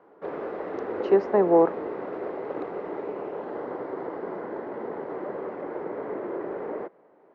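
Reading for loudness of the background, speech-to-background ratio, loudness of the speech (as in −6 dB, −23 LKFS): −34.0 LKFS, 12.0 dB, −22.0 LKFS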